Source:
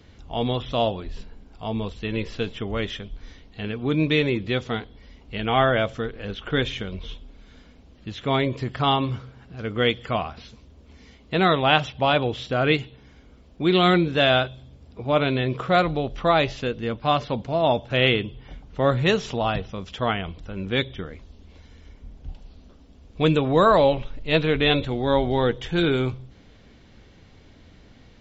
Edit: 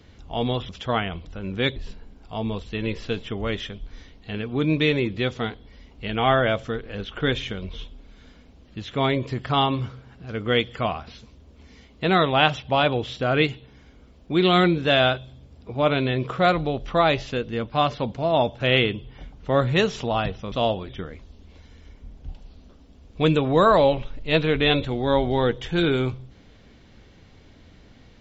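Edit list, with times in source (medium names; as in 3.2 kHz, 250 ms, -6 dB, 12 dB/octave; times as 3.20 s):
0.69–1.06 s: swap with 19.82–20.89 s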